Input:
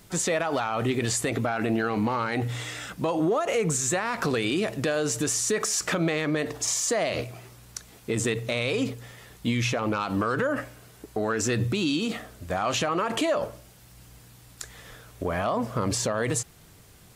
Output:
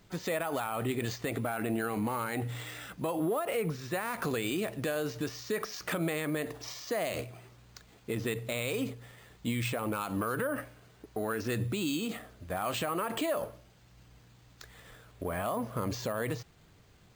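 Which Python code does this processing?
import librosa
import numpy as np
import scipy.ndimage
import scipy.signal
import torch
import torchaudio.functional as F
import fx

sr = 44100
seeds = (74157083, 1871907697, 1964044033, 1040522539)

y = np.repeat(scipy.signal.resample_poly(x, 1, 4), 4)[:len(x)]
y = y * 10.0 ** (-6.5 / 20.0)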